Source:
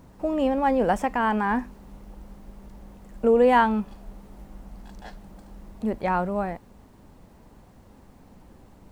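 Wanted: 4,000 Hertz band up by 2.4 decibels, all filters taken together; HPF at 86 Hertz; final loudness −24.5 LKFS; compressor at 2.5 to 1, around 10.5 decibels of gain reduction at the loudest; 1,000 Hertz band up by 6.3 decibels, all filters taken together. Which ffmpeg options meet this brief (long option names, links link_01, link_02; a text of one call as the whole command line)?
ffmpeg -i in.wav -af "highpass=86,equalizer=frequency=1000:width_type=o:gain=7.5,equalizer=frequency=4000:width_type=o:gain=3,acompressor=threshold=-24dB:ratio=2.5,volume=2dB" out.wav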